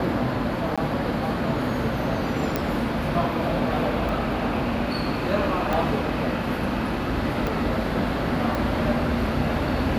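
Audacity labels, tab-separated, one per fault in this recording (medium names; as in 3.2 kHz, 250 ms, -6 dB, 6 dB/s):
0.760000	0.780000	dropout 16 ms
2.560000	2.560000	pop -9 dBFS
4.090000	4.090000	dropout 2.3 ms
5.730000	5.730000	pop
7.470000	7.470000	pop
8.550000	8.550000	pop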